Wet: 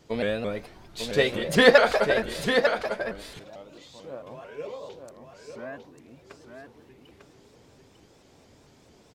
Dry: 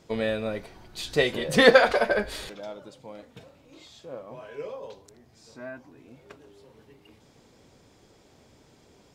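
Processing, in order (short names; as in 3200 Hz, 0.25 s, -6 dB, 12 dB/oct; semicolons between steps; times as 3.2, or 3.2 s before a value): echo 0.898 s -6.5 dB; shaped vibrato saw up 4.5 Hz, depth 160 cents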